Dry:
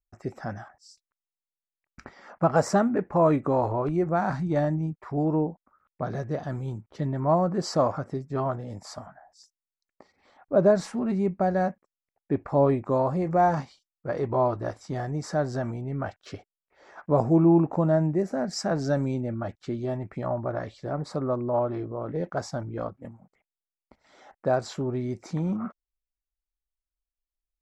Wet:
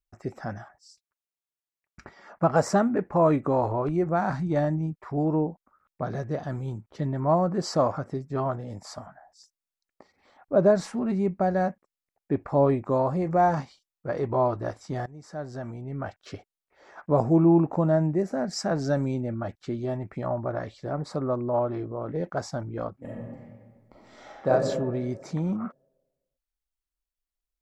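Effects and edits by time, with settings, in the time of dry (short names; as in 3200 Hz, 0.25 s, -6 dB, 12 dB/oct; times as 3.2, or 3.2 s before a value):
0.58–2.43 notch comb 260 Hz
15.06–16.34 fade in, from -18.5 dB
23.02–24.49 reverb throw, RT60 1.6 s, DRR -6.5 dB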